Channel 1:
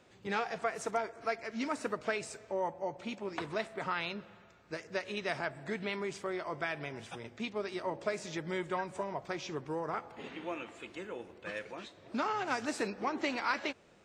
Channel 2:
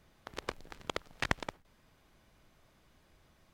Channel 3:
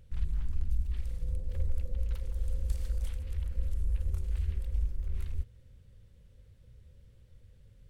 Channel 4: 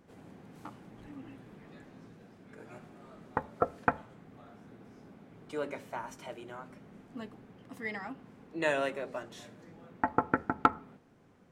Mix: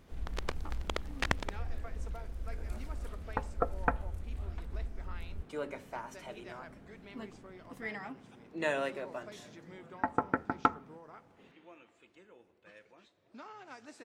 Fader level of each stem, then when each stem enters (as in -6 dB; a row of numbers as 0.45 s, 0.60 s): -16.0 dB, +0.5 dB, -8.0 dB, -2.5 dB; 1.20 s, 0.00 s, 0.00 s, 0.00 s